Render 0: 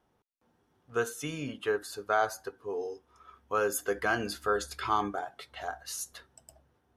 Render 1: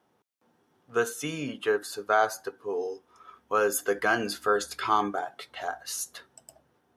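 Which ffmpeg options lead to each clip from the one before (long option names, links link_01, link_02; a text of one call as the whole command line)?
ffmpeg -i in.wav -af "highpass=150,volume=4dB" out.wav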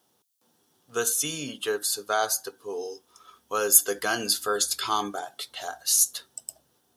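ffmpeg -i in.wav -af "aexciter=amount=5.7:drive=2.9:freq=3100,volume=-2.5dB" out.wav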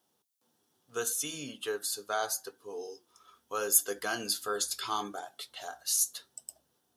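ffmpeg -i in.wav -af "flanger=delay=3:depth=6.8:regen=-79:speed=0.76:shape=triangular,volume=-2.5dB" out.wav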